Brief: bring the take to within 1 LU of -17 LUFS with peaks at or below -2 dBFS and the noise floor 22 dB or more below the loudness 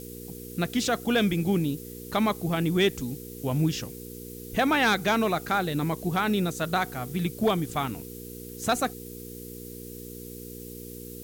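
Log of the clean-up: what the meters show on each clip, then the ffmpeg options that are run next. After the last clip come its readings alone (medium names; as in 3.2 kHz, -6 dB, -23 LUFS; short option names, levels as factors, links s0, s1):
hum 60 Hz; highest harmonic 480 Hz; hum level -39 dBFS; noise floor -41 dBFS; noise floor target -49 dBFS; loudness -27.0 LUFS; peak level -14.0 dBFS; loudness target -17.0 LUFS
-> -af "bandreject=f=60:t=h:w=4,bandreject=f=120:t=h:w=4,bandreject=f=180:t=h:w=4,bandreject=f=240:t=h:w=4,bandreject=f=300:t=h:w=4,bandreject=f=360:t=h:w=4,bandreject=f=420:t=h:w=4,bandreject=f=480:t=h:w=4"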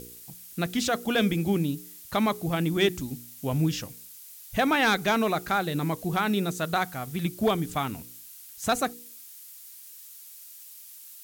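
hum not found; noise floor -47 dBFS; noise floor target -49 dBFS
-> -af "afftdn=nr=6:nf=-47"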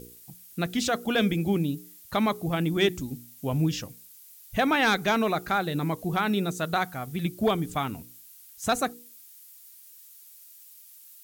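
noise floor -51 dBFS; loudness -27.0 LUFS; peak level -12.5 dBFS; loudness target -17.0 LUFS
-> -af "volume=3.16"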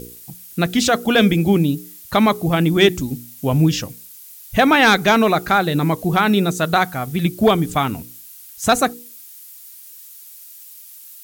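loudness -17.5 LUFS; peak level -2.5 dBFS; noise floor -41 dBFS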